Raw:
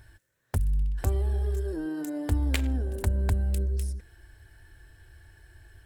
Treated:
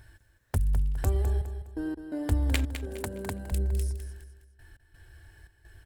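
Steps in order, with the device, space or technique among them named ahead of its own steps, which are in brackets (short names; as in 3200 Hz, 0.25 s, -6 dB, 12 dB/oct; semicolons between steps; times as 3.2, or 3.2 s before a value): 2.74–3.52 HPF 180 Hz 12 dB/oct; trance gate with a delay (step gate "xxxxxxxx..x.xxx." 85 bpm -60 dB; feedback echo 0.206 s, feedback 34%, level -9.5 dB)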